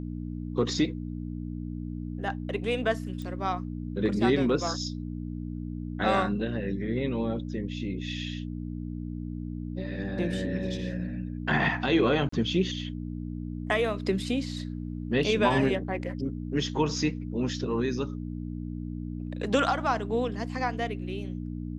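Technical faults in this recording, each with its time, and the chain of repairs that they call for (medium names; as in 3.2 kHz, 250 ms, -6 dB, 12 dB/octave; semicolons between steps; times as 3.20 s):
hum 60 Hz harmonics 5 -35 dBFS
3.22 s: pop -27 dBFS
12.29–12.32 s: dropout 34 ms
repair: de-click; de-hum 60 Hz, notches 5; interpolate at 12.29 s, 34 ms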